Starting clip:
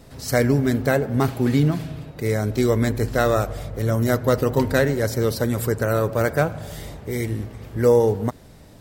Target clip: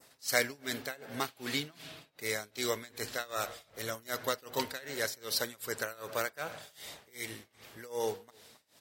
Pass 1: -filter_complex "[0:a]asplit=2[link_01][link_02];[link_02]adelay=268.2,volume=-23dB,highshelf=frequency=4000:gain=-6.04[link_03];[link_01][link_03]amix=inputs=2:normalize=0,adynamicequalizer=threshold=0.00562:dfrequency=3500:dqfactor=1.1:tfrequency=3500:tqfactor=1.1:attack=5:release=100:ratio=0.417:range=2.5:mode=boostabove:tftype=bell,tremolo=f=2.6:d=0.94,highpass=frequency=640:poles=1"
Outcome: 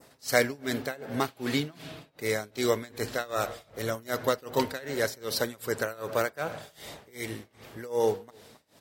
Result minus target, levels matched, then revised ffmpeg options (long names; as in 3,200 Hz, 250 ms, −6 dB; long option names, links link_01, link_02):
500 Hz band +3.0 dB
-filter_complex "[0:a]asplit=2[link_01][link_02];[link_02]adelay=268.2,volume=-23dB,highshelf=frequency=4000:gain=-6.04[link_03];[link_01][link_03]amix=inputs=2:normalize=0,adynamicequalizer=threshold=0.00562:dfrequency=3500:dqfactor=1.1:tfrequency=3500:tqfactor=1.1:attack=5:release=100:ratio=0.417:range=2.5:mode=boostabove:tftype=bell,tremolo=f=2.6:d=0.94,highpass=frequency=2100:poles=1"